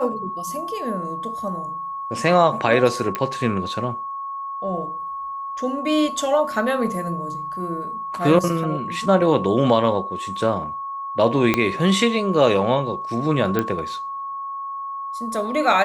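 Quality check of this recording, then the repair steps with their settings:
tone 1100 Hz -27 dBFS
3.15 pop -9 dBFS
11.54 pop -4 dBFS
13.59 pop -8 dBFS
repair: de-click; notch 1100 Hz, Q 30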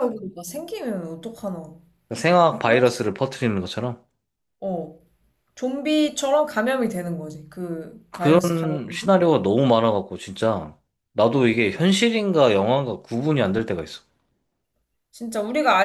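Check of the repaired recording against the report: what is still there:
11.54 pop

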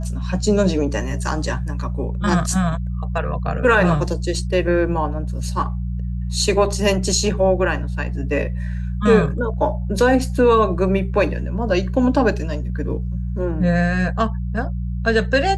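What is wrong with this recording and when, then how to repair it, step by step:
hum 60 Hz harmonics 3 -24 dBFS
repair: de-hum 60 Hz, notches 3

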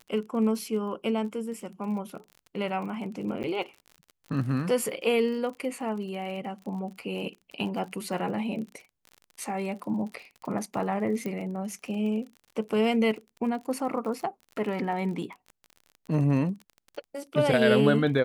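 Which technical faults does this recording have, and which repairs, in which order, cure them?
crackle 35/s -37 dBFS
3.43–3.44 gap 9.4 ms
11.26 pop -21 dBFS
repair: de-click; interpolate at 3.43, 9.4 ms

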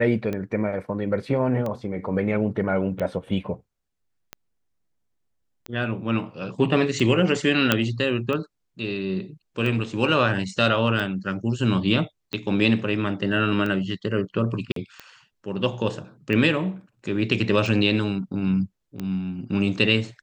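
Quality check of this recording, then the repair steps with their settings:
tick 45 rpm -17 dBFS
7.72 pop -3 dBFS
14.72–14.76 gap 43 ms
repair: de-click; interpolate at 14.72, 43 ms

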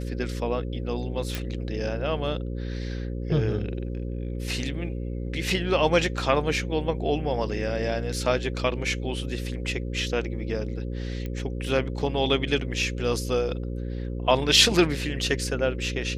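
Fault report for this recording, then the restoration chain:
buzz 60 Hz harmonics 9 -31 dBFS
1.35 pop
11.26 pop -21 dBFS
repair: de-click; de-hum 60 Hz, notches 9

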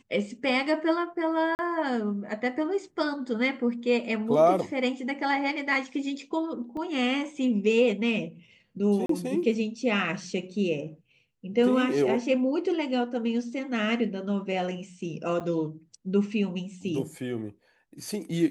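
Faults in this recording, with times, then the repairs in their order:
1.55–1.59 gap 39 ms
6.77 gap 2.3 ms
9.06–9.09 gap 33 ms
15.4–15.41 gap 7.5 ms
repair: interpolate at 1.55, 39 ms; interpolate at 6.77, 2.3 ms; interpolate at 9.06, 33 ms; interpolate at 15.4, 7.5 ms

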